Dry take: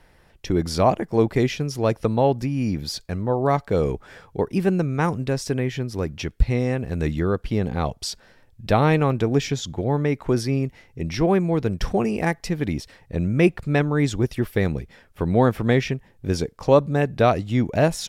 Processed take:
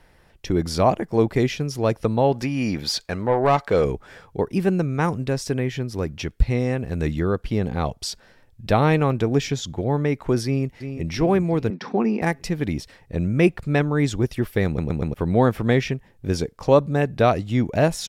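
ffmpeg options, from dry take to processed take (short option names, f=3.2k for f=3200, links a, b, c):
-filter_complex "[0:a]asettb=1/sr,asplit=3[a][b][c];[a]atrim=end=2.324[d];[b]atrim=start=2.32:end=3.85,asetpts=PTS-STARTPTS,afade=t=in:d=0.004:c=qsin,afade=t=out:st=1.526:d=0.004:c=qsin,asplit=2[e][f];[f]highpass=f=720:p=1,volume=14dB,asoftclip=type=tanh:threshold=-7.5dB[g];[e][g]amix=inputs=2:normalize=0,lowpass=f=4.7k:p=1,volume=-6dB[h];[c]atrim=start=3.846[i];[d][h]acrossfade=d=0.004:c1=hsin:c2=qsin[j];[j][i]acrossfade=d=0.004:c1=qsin:c2=hsin,asplit=2[k][l];[l]afade=t=in:st=10.45:d=0.01,afade=t=out:st=11.08:d=0.01,aecho=0:1:350|700|1050|1400|1750|2100:0.354813|0.195147|0.107331|0.0590321|0.0324676|0.0178572[m];[k][m]amix=inputs=2:normalize=0,asettb=1/sr,asplit=3[n][o][p];[n]atrim=end=11.704[q];[o]atrim=start=11.7:end=12.22,asetpts=PTS-STARTPTS,afade=t=in:d=0.004:c=qsin,afade=t=out:st=0.516:d=0.004:c=qsin,highpass=f=210:w=0.5412,highpass=f=210:w=1.3066,equalizer=f=220:t=q:w=4:g=6,equalizer=f=610:t=q:w=4:g=-7,equalizer=f=900:t=q:w=4:g=4,equalizer=f=3k:t=q:w=4:g=-8,lowpass=f=4.7k:w=0.5412,lowpass=f=4.7k:w=1.3066[r];[p]atrim=start=12.216[s];[q][r]acrossfade=d=0.004:c1=hsin:c2=qsin[t];[t][s]acrossfade=d=0.004:c1=qsin:c2=hsin,asplit=5[u][v][w][x][y];[u]atrim=end=14.782[z];[v]atrim=start=14.658:end=14.782[aa];[w]atrim=start=14.658:end=14.782[ab];[x]atrim=start=14.658:end=14.782[ac];[y]atrim=start=15.138[ad];[z][aa]acrossfade=d=0.004:c1=hsin:c2=hsin[ae];[ae][ab]acrossfade=d=0.004:c1=hsin:c2=hsin[af];[af][ac]acrossfade=d=0.004:c1=hsin:c2=hsin[ag];[ag][ad]acrossfade=d=0.004:c1=hsin:c2=hsin"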